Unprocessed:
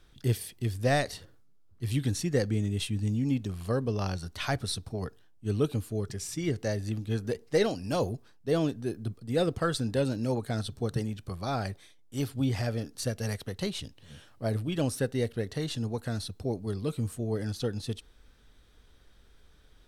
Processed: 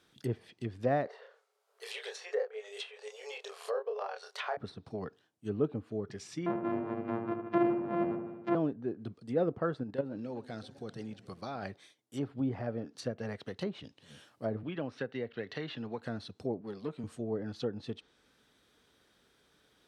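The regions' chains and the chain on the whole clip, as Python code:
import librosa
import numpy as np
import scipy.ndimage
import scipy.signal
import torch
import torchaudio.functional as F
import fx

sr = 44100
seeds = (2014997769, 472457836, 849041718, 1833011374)

y = fx.chain(x, sr, fx.brickwall_highpass(low_hz=400.0),
    fx.doubler(ms=28.0, db=-4.0),
    fx.band_squash(depth_pct=40), at=(1.07, 4.57))
y = fx.chain(y, sr, fx.sample_sort(block=128),
    fx.bandpass_edges(low_hz=130.0, high_hz=2600.0),
    fx.echo_filtered(ms=75, feedback_pct=68, hz=1900.0, wet_db=-5.5), at=(6.46, 8.55))
y = fx.chain(y, sr, fx.level_steps(step_db=12),
    fx.echo_warbled(ms=129, feedback_pct=79, rate_hz=2.8, cents=214, wet_db=-20.5), at=(9.83, 11.63))
y = fx.chain(y, sr, fx.lowpass(hz=3100.0, slope=12),
    fx.tilt_shelf(db=-6.5, hz=1200.0),
    fx.band_squash(depth_pct=70), at=(14.63, 16.02))
y = fx.chain(y, sr, fx.halfwave_gain(db=-7.0),
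    fx.highpass(hz=150.0, slope=12), at=(16.61, 17.04))
y = scipy.signal.sosfilt(scipy.signal.butter(2, 180.0, 'highpass', fs=sr, output='sos'), y)
y = fx.env_lowpass_down(y, sr, base_hz=1200.0, full_db=-29.5)
y = y * librosa.db_to_amplitude(-2.0)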